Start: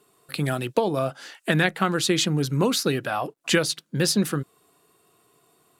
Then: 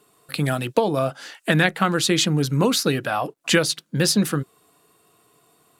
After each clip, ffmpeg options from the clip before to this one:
-af "bandreject=f=380:w=12,volume=1.41"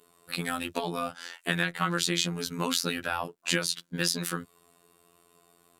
-filter_complex "[0:a]acrossover=split=270|920[s0][s1][s2];[s0]acompressor=threshold=0.0282:ratio=4[s3];[s1]acompressor=threshold=0.0178:ratio=4[s4];[s2]acompressor=threshold=0.0794:ratio=4[s5];[s3][s4][s5]amix=inputs=3:normalize=0,afftfilt=real='hypot(re,im)*cos(PI*b)':imag='0':win_size=2048:overlap=0.75"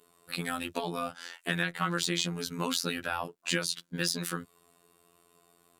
-af "asoftclip=type=tanh:threshold=0.531,volume=0.794"

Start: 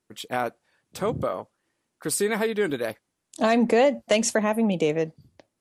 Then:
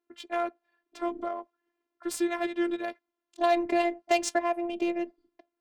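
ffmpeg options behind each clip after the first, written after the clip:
-af "highpass=f=200:w=0.5412,highpass=f=200:w=1.3066,afftfilt=real='hypot(re,im)*cos(PI*b)':imag='0':win_size=512:overlap=0.75,adynamicsmooth=sensitivity=3.5:basefreq=2600"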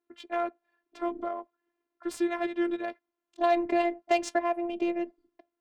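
-af "highshelf=f=4800:g=-10.5"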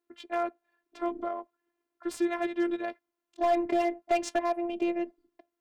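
-af "aeval=exprs='clip(val(0),-1,0.112)':c=same"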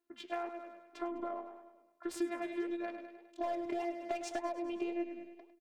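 -filter_complex "[0:a]asplit=2[s0][s1];[s1]aecho=0:1:102|204|306|408|510|612:0.251|0.133|0.0706|0.0374|0.0198|0.0105[s2];[s0][s2]amix=inputs=2:normalize=0,acompressor=threshold=0.0224:ratio=6,flanger=delay=2.9:depth=8.2:regen=83:speed=1.8:shape=sinusoidal,volume=1.41"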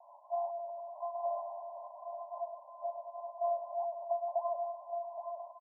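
-filter_complex "[0:a]aeval=exprs='val(0)+0.5*0.00944*sgn(val(0))':c=same,asuperpass=centerf=770:order=20:qfactor=1.6,asplit=2[s0][s1];[s1]aecho=0:1:820:0.447[s2];[s0][s2]amix=inputs=2:normalize=0,volume=1.33"

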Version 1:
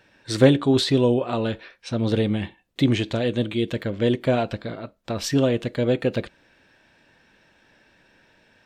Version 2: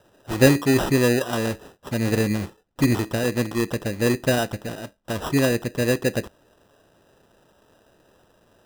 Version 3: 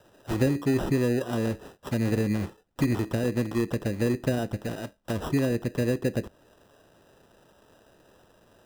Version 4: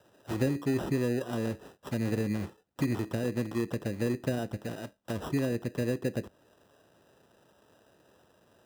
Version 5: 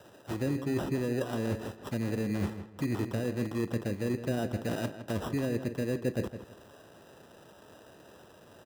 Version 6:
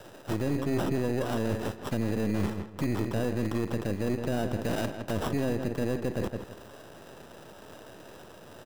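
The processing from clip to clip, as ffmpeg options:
-af "acrusher=samples=20:mix=1:aa=0.000001"
-filter_complex "[0:a]acrossover=split=490|2700[s0][s1][s2];[s0]acompressor=threshold=0.0794:ratio=4[s3];[s1]acompressor=threshold=0.0141:ratio=4[s4];[s2]acompressor=threshold=0.00631:ratio=4[s5];[s3][s4][s5]amix=inputs=3:normalize=0"
-af "highpass=72,volume=0.596"
-filter_complex "[0:a]areverse,acompressor=threshold=0.0141:ratio=6,areverse,asplit=2[s0][s1];[s1]adelay=162,lowpass=f=3400:p=1,volume=0.299,asplit=2[s2][s3];[s3]adelay=162,lowpass=f=3400:p=1,volume=0.27,asplit=2[s4][s5];[s5]adelay=162,lowpass=f=3400:p=1,volume=0.27[s6];[s0][s2][s4][s6]amix=inputs=4:normalize=0,volume=2.66"
-af "aeval=exprs='if(lt(val(0),0),0.447*val(0),val(0))':c=same,alimiter=level_in=1.41:limit=0.0631:level=0:latency=1:release=34,volume=0.708,volume=2.66"

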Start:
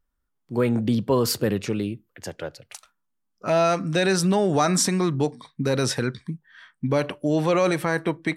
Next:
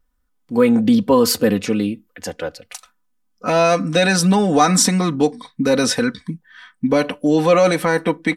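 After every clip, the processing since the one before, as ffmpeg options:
-af "aecho=1:1:4:0.72,volume=1.78"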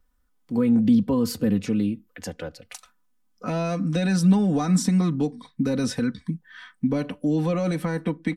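-filter_complex "[0:a]acrossover=split=250[s0][s1];[s1]acompressor=threshold=0.00891:ratio=2[s2];[s0][s2]amix=inputs=2:normalize=0"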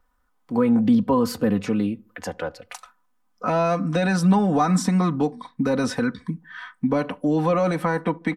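-filter_complex "[0:a]equalizer=f=980:w=0.67:g=12.5,asplit=2[s0][s1];[s1]adelay=71,lowpass=f=890:p=1,volume=0.0631,asplit=2[s2][s3];[s3]adelay=71,lowpass=f=890:p=1,volume=0.42,asplit=2[s4][s5];[s5]adelay=71,lowpass=f=890:p=1,volume=0.42[s6];[s0][s2][s4][s6]amix=inputs=4:normalize=0,volume=0.841"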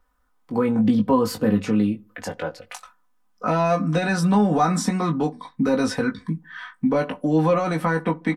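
-filter_complex "[0:a]asplit=2[s0][s1];[s1]adelay=19,volume=0.531[s2];[s0][s2]amix=inputs=2:normalize=0"

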